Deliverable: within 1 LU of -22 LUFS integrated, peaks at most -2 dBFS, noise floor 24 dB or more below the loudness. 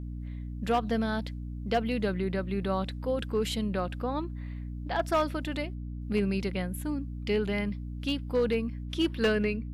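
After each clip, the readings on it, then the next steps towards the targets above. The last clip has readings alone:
clipped 0.5%; flat tops at -19.5 dBFS; hum 60 Hz; harmonics up to 300 Hz; hum level -35 dBFS; loudness -31.0 LUFS; peak -19.5 dBFS; loudness target -22.0 LUFS
-> clip repair -19.5 dBFS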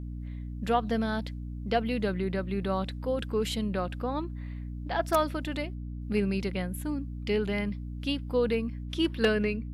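clipped 0.0%; hum 60 Hz; harmonics up to 300 Hz; hum level -34 dBFS
-> de-hum 60 Hz, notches 5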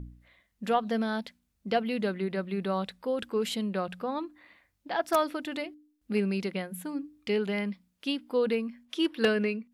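hum none; loudness -31.0 LUFS; peak -10.0 dBFS; loudness target -22.0 LUFS
-> gain +9 dB; limiter -2 dBFS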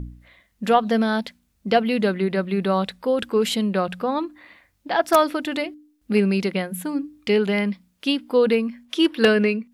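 loudness -22.0 LUFS; peak -2.0 dBFS; noise floor -67 dBFS

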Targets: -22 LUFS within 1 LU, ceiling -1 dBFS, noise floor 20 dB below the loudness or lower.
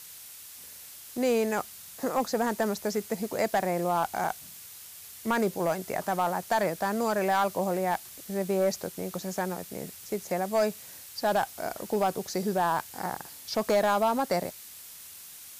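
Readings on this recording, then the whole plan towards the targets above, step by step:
clipped 0.6%; flat tops at -18.0 dBFS; noise floor -47 dBFS; noise floor target -50 dBFS; loudness -29.5 LUFS; peak -18.0 dBFS; loudness target -22.0 LUFS
-> clip repair -18 dBFS; denoiser 6 dB, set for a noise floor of -47 dBFS; gain +7.5 dB

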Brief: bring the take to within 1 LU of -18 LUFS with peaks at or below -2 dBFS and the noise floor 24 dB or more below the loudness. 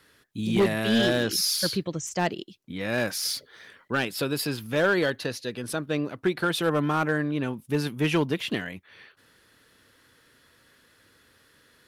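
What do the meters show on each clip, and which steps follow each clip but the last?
clipped 0.4%; flat tops at -16.0 dBFS; loudness -26.5 LUFS; peak -16.0 dBFS; loudness target -18.0 LUFS
-> clip repair -16 dBFS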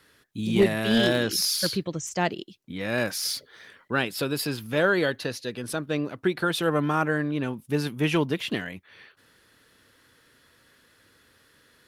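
clipped 0.0%; loudness -26.0 LUFS; peak -8.0 dBFS; loudness target -18.0 LUFS
-> gain +8 dB; limiter -2 dBFS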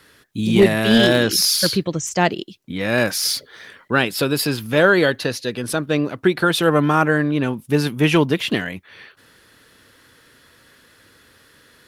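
loudness -18.0 LUFS; peak -2.0 dBFS; noise floor -53 dBFS

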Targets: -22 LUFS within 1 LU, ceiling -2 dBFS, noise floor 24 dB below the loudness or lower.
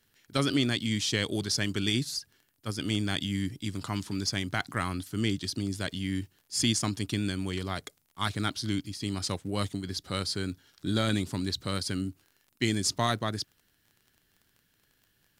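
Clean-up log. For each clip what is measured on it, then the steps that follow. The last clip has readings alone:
ticks 33/s; loudness -31.0 LUFS; peak -13.5 dBFS; loudness target -22.0 LUFS
-> de-click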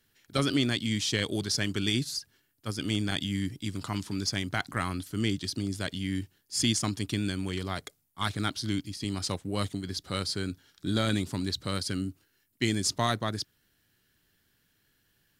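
ticks 0.065/s; loudness -31.0 LUFS; peak -13.5 dBFS; loudness target -22.0 LUFS
-> gain +9 dB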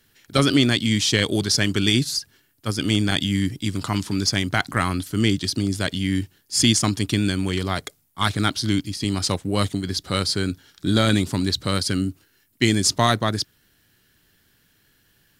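loudness -22.0 LUFS; peak -4.5 dBFS; noise floor -63 dBFS

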